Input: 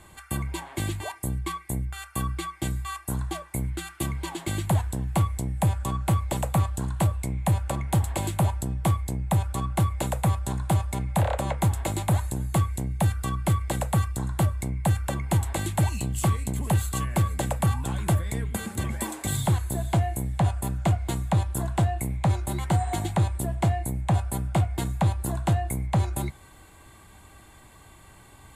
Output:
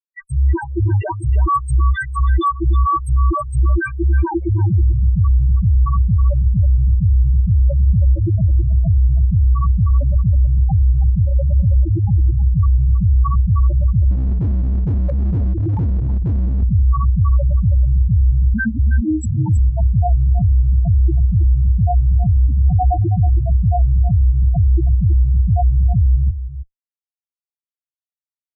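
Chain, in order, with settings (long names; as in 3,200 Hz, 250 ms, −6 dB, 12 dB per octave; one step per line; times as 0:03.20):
spectral dynamics exaggerated over time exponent 1.5
fuzz pedal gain 56 dB, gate −46 dBFS
spectral peaks only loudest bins 2
low-shelf EQ 88 Hz +4 dB
single-tap delay 321 ms −11.5 dB
0:14.11–0:16.63: hard clipping −16 dBFS, distortion −18 dB
level +1.5 dB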